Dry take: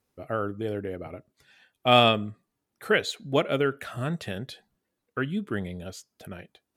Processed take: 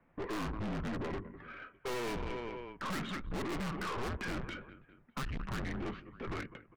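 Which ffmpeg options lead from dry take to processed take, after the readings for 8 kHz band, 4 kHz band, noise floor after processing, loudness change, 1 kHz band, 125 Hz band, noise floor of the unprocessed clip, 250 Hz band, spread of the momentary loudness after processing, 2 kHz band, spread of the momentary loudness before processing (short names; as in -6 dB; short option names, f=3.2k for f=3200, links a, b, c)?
-6.0 dB, -17.0 dB, -68 dBFS, -13.0 dB, -12.5 dB, -8.0 dB, -82 dBFS, -8.0 dB, 9 LU, -10.5 dB, 23 LU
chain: -filter_complex "[0:a]asplit=2[a][b];[b]aecho=0:1:202|404|606:0.0631|0.0303|0.0145[c];[a][c]amix=inputs=2:normalize=0,acompressor=threshold=-25dB:ratio=6,highpass=f=260:t=q:w=0.5412,highpass=f=260:t=q:w=1.307,lowpass=f=2.5k:t=q:w=0.5176,lowpass=f=2.5k:t=q:w=0.7071,lowpass=f=2.5k:t=q:w=1.932,afreqshift=-240,aeval=exprs='(tanh(282*val(0)+0.35)-tanh(0.35))/282':c=same,volume=13dB"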